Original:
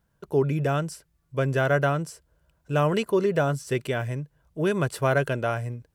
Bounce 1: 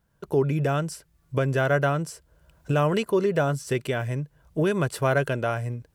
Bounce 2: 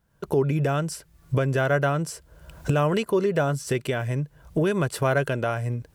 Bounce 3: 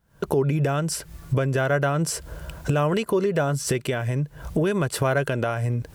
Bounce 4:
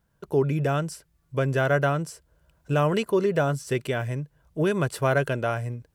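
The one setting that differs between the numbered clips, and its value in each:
camcorder AGC, rising by: 14, 35, 87, 5.7 dB per second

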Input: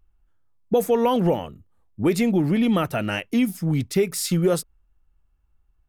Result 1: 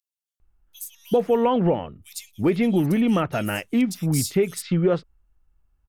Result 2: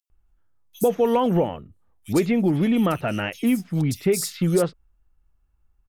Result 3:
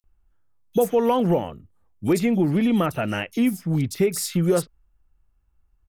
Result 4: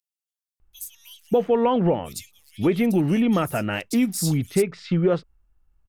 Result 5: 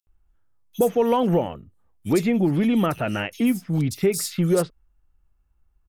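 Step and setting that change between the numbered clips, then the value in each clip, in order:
multiband delay without the direct sound, delay time: 400, 100, 40, 600, 70 milliseconds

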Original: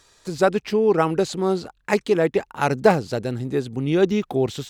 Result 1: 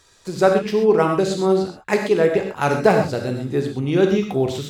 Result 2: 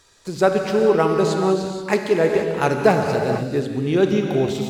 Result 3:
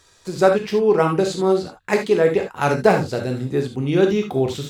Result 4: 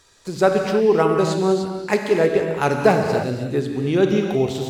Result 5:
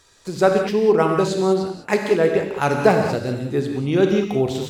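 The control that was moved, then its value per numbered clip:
reverb whose tail is shaped and stops, gate: 150, 510, 100, 340, 230 milliseconds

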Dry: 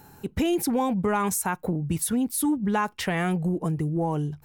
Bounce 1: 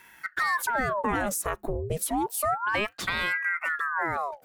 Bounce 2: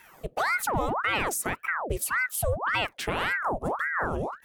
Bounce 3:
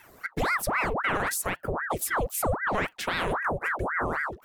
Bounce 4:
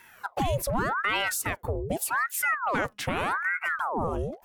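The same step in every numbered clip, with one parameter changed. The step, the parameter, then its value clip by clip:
ring modulator whose carrier an LFO sweeps, at: 0.3, 1.8, 3.8, 0.84 Hertz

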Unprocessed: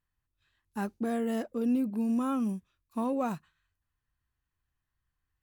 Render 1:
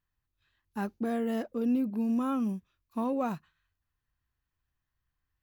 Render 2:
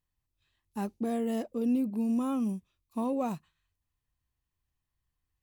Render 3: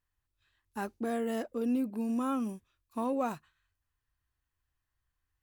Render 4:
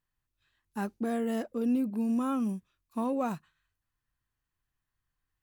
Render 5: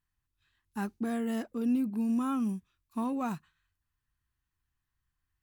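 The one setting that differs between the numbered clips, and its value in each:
parametric band, centre frequency: 8,700, 1,500, 180, 68, 550 Hertz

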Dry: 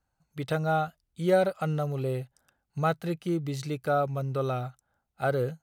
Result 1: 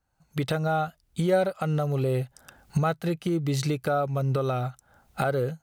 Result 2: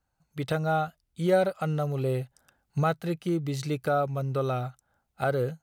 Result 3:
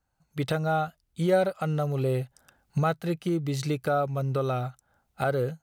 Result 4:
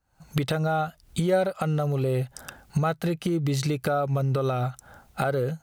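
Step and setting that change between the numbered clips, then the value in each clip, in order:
camcorder AGC, rising by: 35, 5.1, 13, 89 dB per second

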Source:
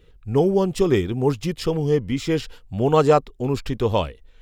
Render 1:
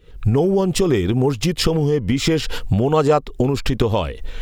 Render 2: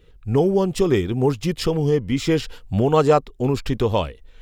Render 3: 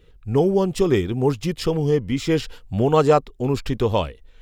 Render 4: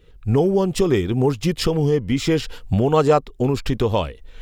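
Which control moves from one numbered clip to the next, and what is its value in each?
camcorder AGC, rising by: 91, 13, 5.2, 31 dB per second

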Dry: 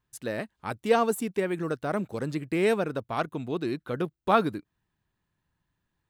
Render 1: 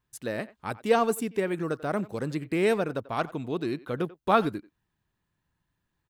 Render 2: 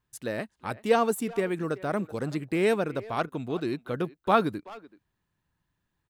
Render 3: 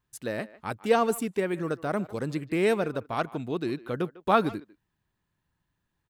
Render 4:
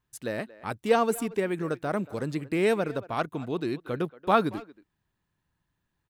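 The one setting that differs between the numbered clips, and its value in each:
far-end echo of a speakerphone, delay time: 90, 380, 150, 230 milliseconds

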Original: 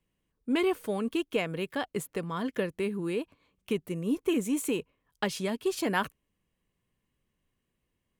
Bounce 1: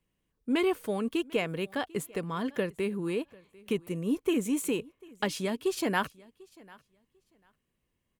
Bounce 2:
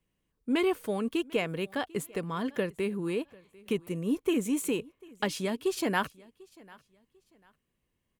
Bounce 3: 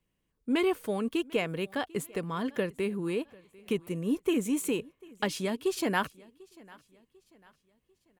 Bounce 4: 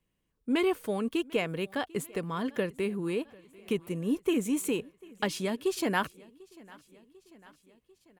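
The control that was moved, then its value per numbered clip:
repeating echo, feedback: 18, 28, 41, 62%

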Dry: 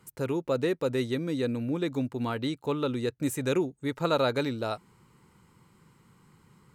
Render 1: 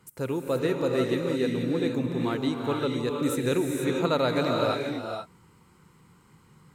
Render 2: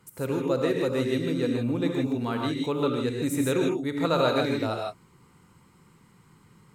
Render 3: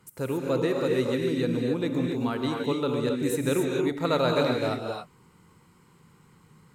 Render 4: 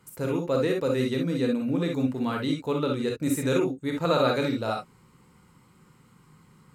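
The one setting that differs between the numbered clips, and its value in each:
reverb whose tail is shaped and stops, gate: 510, 180, 300, 80 milliseconds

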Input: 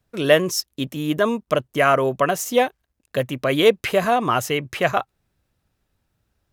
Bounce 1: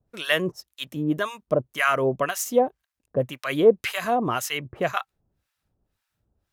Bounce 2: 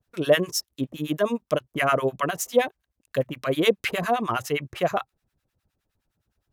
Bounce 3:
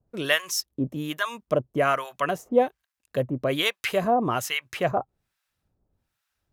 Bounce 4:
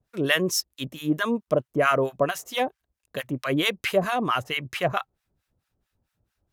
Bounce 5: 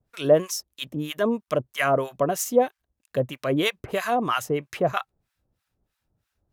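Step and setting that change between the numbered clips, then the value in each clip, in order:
two-band tremolo in antiphase, speed: 1.9, 9.7, 1.2, 4.5, 3.1 Hertz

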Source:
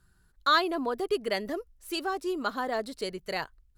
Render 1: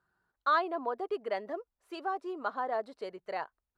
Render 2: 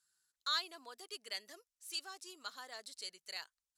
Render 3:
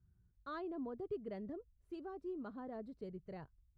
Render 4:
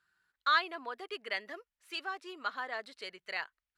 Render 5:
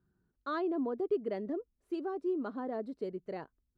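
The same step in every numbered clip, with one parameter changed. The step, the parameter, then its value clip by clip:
resonant band-pass, frequency: 810, 6,900, 100, 2,100, 280 Hertz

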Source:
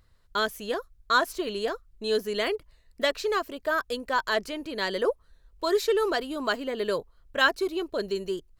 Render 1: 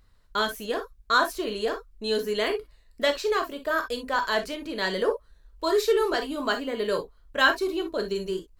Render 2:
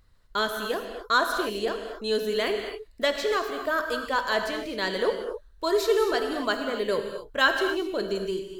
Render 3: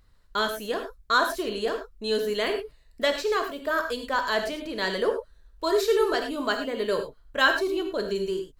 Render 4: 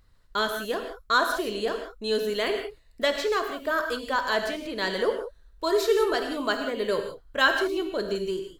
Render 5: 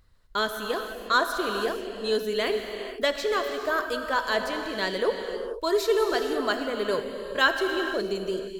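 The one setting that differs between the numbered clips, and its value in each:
reverb whose tail is shaped and stops, gate: 80, 290, 130, 200, 510 milliseconds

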